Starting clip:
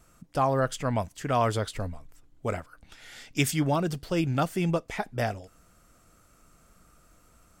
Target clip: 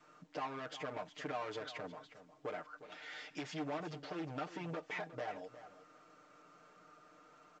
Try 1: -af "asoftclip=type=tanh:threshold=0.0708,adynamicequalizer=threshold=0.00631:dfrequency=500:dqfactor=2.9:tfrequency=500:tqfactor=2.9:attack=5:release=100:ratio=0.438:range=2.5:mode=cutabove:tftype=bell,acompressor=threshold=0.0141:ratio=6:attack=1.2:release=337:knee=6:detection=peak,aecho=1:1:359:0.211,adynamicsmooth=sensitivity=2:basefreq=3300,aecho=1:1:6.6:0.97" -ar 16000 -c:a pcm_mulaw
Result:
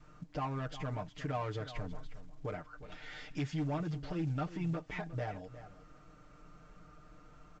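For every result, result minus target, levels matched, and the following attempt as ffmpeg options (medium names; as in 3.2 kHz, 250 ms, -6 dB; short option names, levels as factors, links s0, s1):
saturation: distortion -6 dB; 500 Hz band -3.5 dB
-af "asoftclip=type=tanh:threshold=0.0299,adynamicequalizer=threshold=0.00631:dfrequency=500:dqfactor=2.9:tfrequency=500:tqfactor=2.9:attack=5:release=100:ratio=0.438:range=2.5:mode=cutabove:tftype=bell,acompressor=threshold=0.0141:ratio=6:attack=1.2:release=337:knee=6:detection=peak,aecho=1:1:359:0.211,adynamicsmooth=sensitivity=2:basefreq=3300,aecho=1:1:6.6:0.97" -ar 16000 -c:a pcm_mulaw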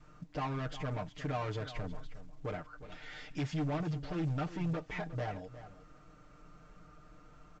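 500 Hz band -3.5 dB
-af "asoftclip=type=tanh:threshold=0.0299,adynamicequalizer=threshold=0.00631:dfrequency=500:dqfactor=2.9:tfrequency=500:tqfactor=2.9:attack=5:release=100:ratio=0.438:range=2.5:mode=cutabove:tftype=bell,highpass=360,acompressor=threshold=0.0141:ratio=6:attack=1.2:release=337:knee=6:detection=peak,aecho=1:1:359:0.211,adynamicsmooth=sensitivity=2:basefreq=3300,aecho=1:1:6.6:0.97" -ar 16000 -c:a pcm_mulaw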